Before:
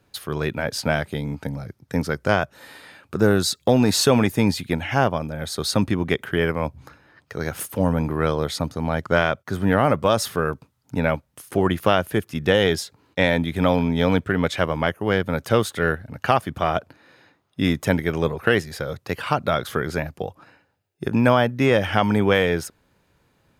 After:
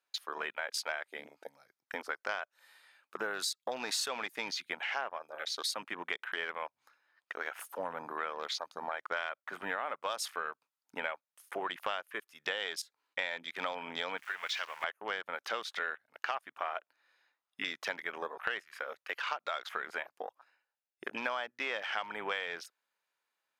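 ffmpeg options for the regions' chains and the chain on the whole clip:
-filter_complex "[0:a]asettb=1/sr,asplit=3[a][b][c];[a]atrim=end=14.174[d];[b]atrim=start=14.17:end=14.84,asetpts=PTS-STARTPTS,afade=t=in:d=0.004:c=qsin,afade=t=out:st=0.666:d=0.004:c=qsin,aeval=exprs='val(0)+0.5*0.0473*sgn(val(0))':c=same,equalizer=f=500:w=0.43:g=-12.5,bandreject=f=280:w=6.3[e];[c]atrim=start=14.836[f];[d][e]acrossfade=d=0.004:c1=hsin:c2=qsin[g];[g][f]acrossfade=d=0.004:c1=qsin:c2=hsin,highpass=970,afwtdn=0.0126,acompressor=threshold=-34dB:ratio=4"

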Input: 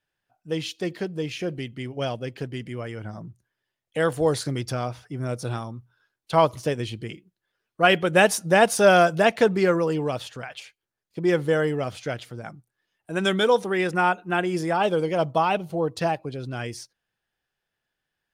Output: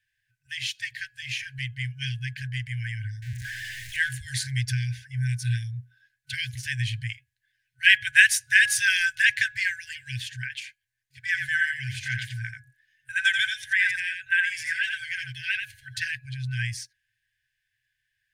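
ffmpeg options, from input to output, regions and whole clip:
-filter_complex "[0:a]asettb=1/sr,asplit=3[a][b][c];[a]atrim=end=3.224[d];[b]atrim=start=3.22:end=4.09,asetpts=PTS-STARTPTS,afade=t=in:d=0.004:c=qsin,afade=t=out:st=0.866:d=0.004:c=qsin,aeval=exprs='val(0)+0.5*0.0211*sgn(val(0))':c=same,highshelf=f=9.6k:g=-8[e];[c]atrim=start=4.086[f];[d][e]acrossfade=d=0.004:c1=hsin:c2=qsin[g];[g][f]acrossfade=d=0.004:c1=qsin:c2=hsin,asettb=1/sr,asplit=3[h][i][j];[h]atrim=end=11.264[k];[i]atrim=start=11.26:end=16.02,asetpts=PTS-STARTPTS,afade=t=in:d=0.004:c=qsin,afade=t=out:st=4.756:d=0.004:c=qsin,acompressor=threshold=-26dB:ratio=1.5:attack=3.2:release=140:knee=1:detection=peak,equalizer=f=940:t=o:w=1.5:g=9,aecho=1:1:86:0.501,atrim=end_sample=209916[l];[j]atrim=start=16.016[m];[k][l]acrossfade=d=0.004:c1=hsin:c2=qsin[n];[n][m]acrossfade=d=0.004:c1=qsin:c2=hsin,bandreject=f=239.2:t=h:w=4,bandreject=f=478.4:t=h:w=4,bandreject=f=717.6:t=h:w=4,bandreject=f=956.8:t=h:w=4,bandreject=f=1.196k:t=h:w=4,bandreject=f=1.4352k:t=h:w=4,bandreject=f=1.6744k:t=h:w=4,afftfilt=real='re*(1-between(b*sr/4096,130,1500))':imag='im*(1-between(b*sr/4096,130,1500))':win_size=4096:overlap=0.75,equalizer=f=125:t=o:w=1:g=7,equalizer=f=250:t=o:w=1:g=-7,equalizer=f=1k:t=o:w=1:g=6,equalizer=f=2k:t=o:w=1:g=7,equalizer=f=8k:t=o:w=1:g=3"

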